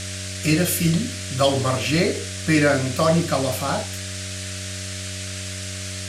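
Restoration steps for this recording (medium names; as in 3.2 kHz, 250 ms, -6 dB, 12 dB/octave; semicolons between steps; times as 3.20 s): de-hum 94.8 Hz, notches 8; band-stop 610 Hz, Q 30; noise print and reduce 30 dB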